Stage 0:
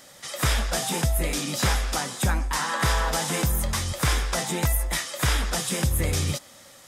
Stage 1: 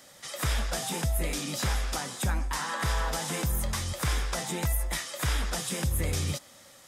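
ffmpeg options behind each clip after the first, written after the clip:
-filter_complex "[0:a]acrossover=split=120[s0][s1];[s1]acompressor=threshold=0.0631:ratio=6[s2];[s0][s2]amix=inputs=2:normalize=0,volume=0.631"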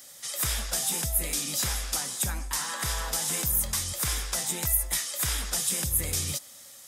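-af "crystalizer=i=3.5:c=0,volume=0.562"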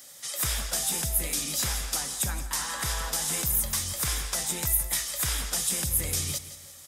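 -af "aecho=1:1:169|338|507|676:0.2|0.0838|0.0352|0.0148"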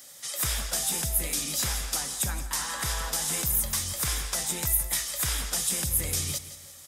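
-af anull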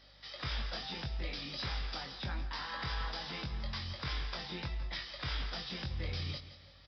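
-filter_complex "[0:a]aeval=exprs='val(0)+0.00112*(sin(2*PI*50*n/s)+sin(2*PI*2*50*n/s)/2+sin(2*PI*3*50*n/s)/3+sin(2*PI*4*50*n/s)/4+sin(2*PI*5*50*n/s)/5)':c=same,aresample=11025,aresample=44100,asplit=2[s0][s1];[s1]adelay=22,volume=0.562[s2];[s0][s2]amix=inputs=2:normalize=0,volume=0.447"

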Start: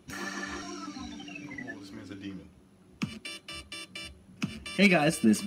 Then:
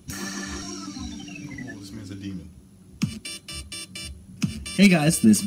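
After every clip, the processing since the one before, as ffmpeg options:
-af "bass=f=250:g=12,treble=f=4000:g=12"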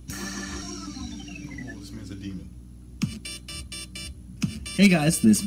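-af "aeval=exprs='val(0)+0.00794*(sin(2*PI*60*n/s)+sin(2*PI*2*60*n/s)/2+sin(2*PI*3*60*n/s)/3+sin(2*PI*4*60*n/s)/4+sin(2*PI*5*60*n/s)/5)':c=same,volume=0.841"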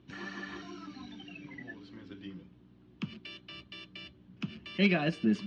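-af "highpass=170,equalizer=f=240:t=q:w=4:g=-3,equalizer=f=390:t=q:w=4:g=5,equalizer=f=980:t=q:w=4:g=4,equalizer=f=1700:t=q:w=4:g=4,equalizer=f=3200:t=q:w=4:g=4,lowpass=f=3700:w=0.5412,lowpass=f=3700:w=1.3066,volume=0.422"

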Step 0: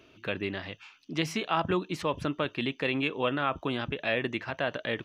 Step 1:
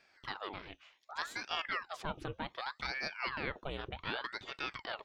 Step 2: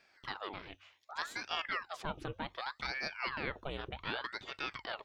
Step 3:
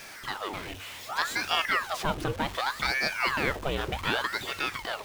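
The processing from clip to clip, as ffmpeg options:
-af "aeval=exprs='val(0)*sin(2*PI*1100*n/s+1100*0.85/0.66*sin(2*PI*0.66*n/s))':c=same,volume=0.447"
-af "bandreject=f=47.83:t=h:w=4,bandreject=f=95.66:t=h:w=4"
-af "aeval=exprs='val(0)+0.5*0.00562*sgn(val(0))':c=same,dynaudnorm=f=240:g=7:m=1.58,volume=1.88"

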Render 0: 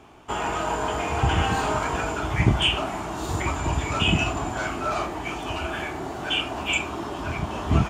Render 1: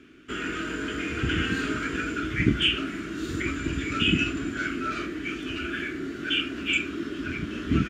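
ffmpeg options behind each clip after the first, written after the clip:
-af "firequalizer=gain_entry='entry(110,0);entry(280,13);entry(840,-25);entry(1400,9);entry(8300,-2)':delay=0.05:min_phase=1,volume=0.422"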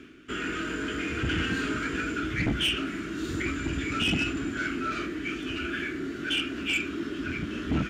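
-af "areverse,acompressor=mode=upward:threshold=0.0126:ratio=2.5,areverse,asoftclip=type=tanh:threshold=0.0944"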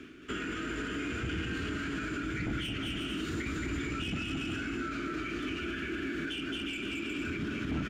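-filter_complex "[0:a]asplit=2[s0][s1];[s1]aecho=0:1:220|363|456|516.4|555.6:0.631|0.398|0.251|0.158|0.1[s2];[s0][s2]amix=inputs=2:normalize=0,alimiter=level_in=1.26:limit=0.0631:level=0:latency=1:release=77,volume=0.794,acrossover=split=350[s3][s4];[s4]acompressor=threshold=0.0158:ratio=6[s5];[s3][s5]amix=inputs=2:normalize=0"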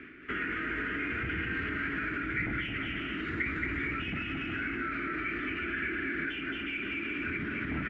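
-af "lowpass=f=2000:t=q:w=4.8,volume=0.794"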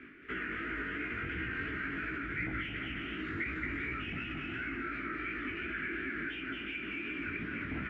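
-af "flanger=delay=15.5:depth=5.6:speed=2.8,volume=0.891"

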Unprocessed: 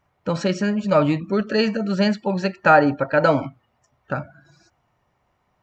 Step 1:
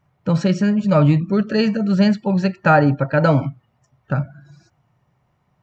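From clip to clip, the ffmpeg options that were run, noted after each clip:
-af "equalizer=f=140:t=o:w=1.1:g=12.5,volume=0.891"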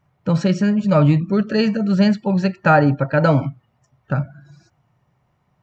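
-af anull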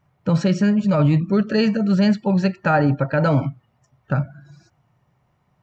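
-af "alimiter=limit=0.355:level=0:latency=1:release=19"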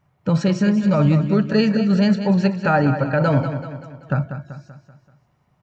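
-af "aecho=1:1:192|384|576|768|960:0.335|0.164|0.0804|0.0394|0.0193"

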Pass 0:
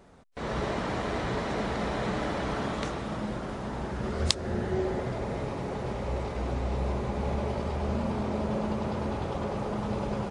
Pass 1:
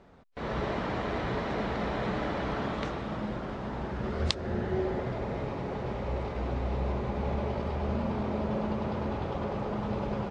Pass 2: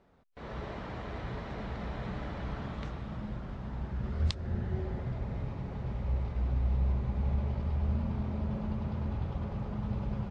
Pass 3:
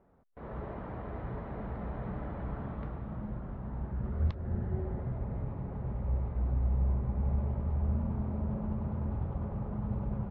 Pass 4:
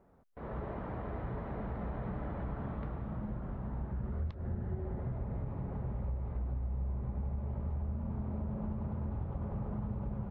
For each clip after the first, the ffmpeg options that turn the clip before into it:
-af "lowpass=4200,volume=0.891"
-af "asubboost=boost=5:cutoff=170,volume=0.355"
-af "lowpass=1300"
-af "acompressor=threshold=0.02:ratio=6,volume=1.12"

